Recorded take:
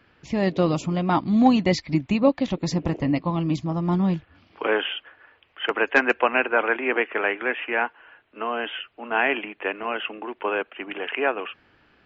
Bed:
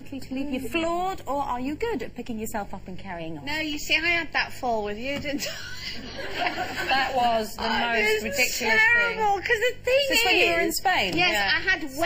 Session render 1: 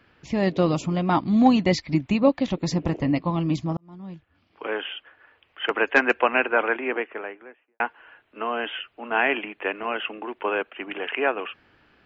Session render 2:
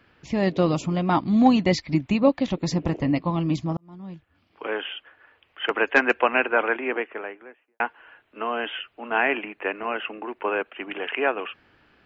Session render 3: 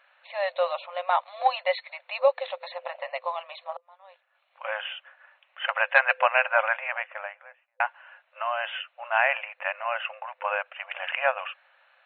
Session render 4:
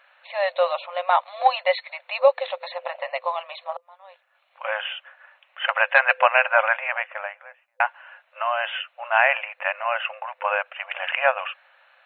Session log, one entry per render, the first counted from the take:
0:03.77–0:05.73: fade in; 0:06.49–0:07.80: fade out and dull
0:09.18–0:10.66: parametric band 3,300 Hz −7.5 dB 0.3 octaves
notch filter 3,200 Hz, Q 14; brick-wall band-pass 510–4,300 Hz
level +4.5 dB; brickwall limiter −3 dBFS, peak gain reduction 2.5 dB

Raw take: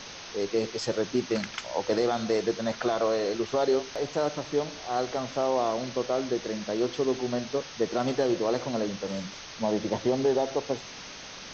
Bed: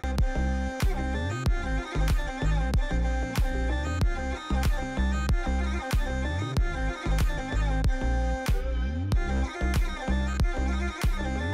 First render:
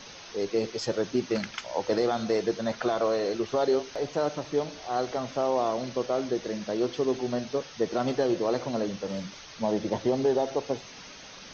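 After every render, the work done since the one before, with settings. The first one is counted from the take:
broadband denoise 6 dB, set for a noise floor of −43 dBFS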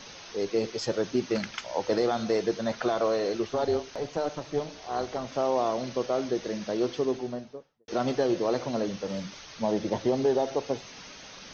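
0:03.48–0:05.32: amplitude modulation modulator 300 Hz, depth 35%
0:06.87–0:07.88: fade out and dull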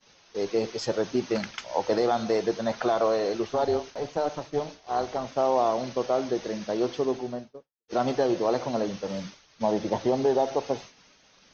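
downward expander −36 dBFS
dynamic equaliser 810 Hz, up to +5 dB, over −39 dBFS, Q 1.5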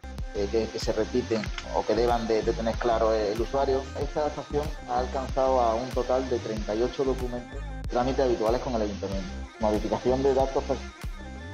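mix in bed −10 dB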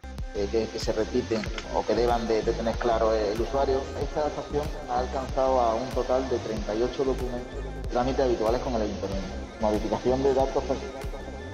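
echo machine with several playback heads 191 ms, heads first and third, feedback 62%, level −17.5 dB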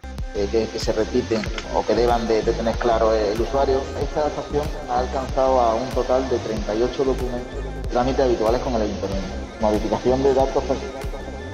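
level +5.5 dB

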